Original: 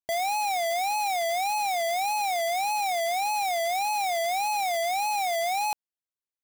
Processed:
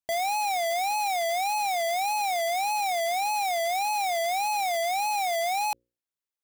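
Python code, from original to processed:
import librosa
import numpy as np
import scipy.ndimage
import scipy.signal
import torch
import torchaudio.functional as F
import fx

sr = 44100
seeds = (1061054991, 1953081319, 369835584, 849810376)

y = fx.hum_notches(x, sr, base_hz=60, count=9)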